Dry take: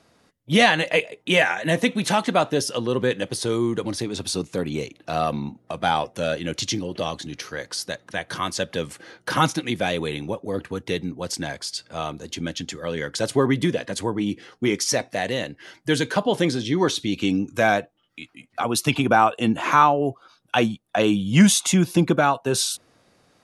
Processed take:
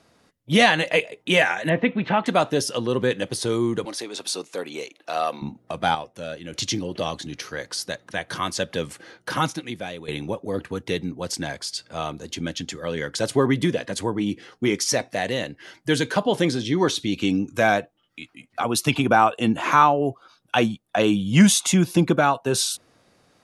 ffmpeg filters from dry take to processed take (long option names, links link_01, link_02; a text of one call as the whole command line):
ffmpeg -i in.wav -filter_complex "[0:a]asettb=1/sr,asplit=3[link_01][link_02][link_03];[link_01]atrim=end=1.694[link_04];[link_02]atrim=start=1.69:end=2.26,asetpts=PTS-STARTPTS,afade=type=in:duration=0.004:curve=qsin,afade=type=out:start_time=0.566:duration=0.004:curve=qsin,lowpass=frequency=2700:width=0.5412,lowpass=frequency=2700:width=1.3066[link_05];[link_03]atrim=start=2.256[link_06];[link_04][link_05]acrossfade=duration=0.004:curve1=hsin:curve2=qsin[link_07];[link_07][link_06]acrossfade=duration=0.004:curve1=qsin:curve2=hsin,asettb=1/sr,asplit=3[link_08][link_09][link_10];[link_08]atrim=end=3.854[link_11];[link_09]atrim=start=3.85:end=5.42,asetpts=PTS-STARTPTS,afade=type=in:duration=0.004:curve=qsin,afade=type=out:start_time=1.566:duration=0.004:curve=qsin,highpass=460[link_12];[link_10]atrim=start=5.416[link_13];[link_11][link_12]acrossfade=duration=0.004:curve1=hsin:curve2=qsin[link_14];[link_14][link_13]acrossfade=duration=0.004:curve1=qsin:curve2=hsin,asplit=4[link_15][link_16][link_17][link_18];[link_15]atrim=end=5.952[link_19];[link_16]atrim=start=5.948:end=6.532,asetpts=PTS-STARTPTS,volume=-8.5dB[link_20];[link_17]atrim=start=6.528:end=10.08,asetpts=PTS-STARTPTS,afade=type=out:start_time=2.382:duration=1.17:silence=0.211349[link_21];[link_18]atrim=start=10.08,asetpts=PTS-STARTPTS,afade=type=in:duration=0.004:curve=hsin:silence=0.211349[link_22];[link_19][link_20]acrossfade=duration=0.004:curve1=hsin:curve2=hsin[link_23];[link_21][link_22]concat=n=2:v=0:a=1[link_24];[link_23][link_24]acrossfade=duration=0.004:curve1=hsin:curve2=hsin" out.wav